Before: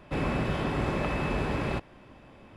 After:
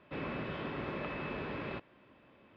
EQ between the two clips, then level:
high-pass filter 230 Hz 6 dB per octave
low-pass filter 3,900 Hz 24 dB per octave
parametric band 780 Hz −5.5 dB 0.41 octaves
−7.0 dB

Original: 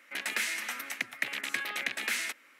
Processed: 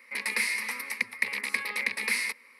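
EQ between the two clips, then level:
EQ curve with evenly spaced ripples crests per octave 0.9, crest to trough 14 dB
0.0 dB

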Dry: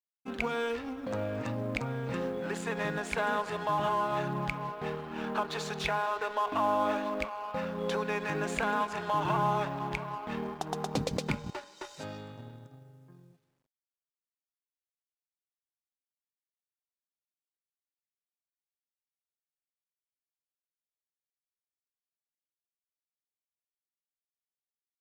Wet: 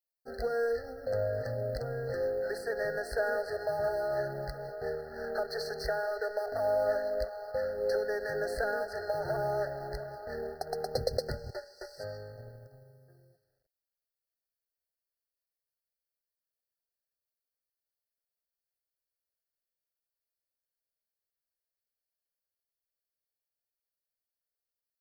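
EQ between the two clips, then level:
linear-phase brick-wall band-stop 2,000–4,100 Hz
phaser with its sweep stopped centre 440 Hz, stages 4
phaser with its sweep stopped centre 1,500 Hz, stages 8
+6.5 dB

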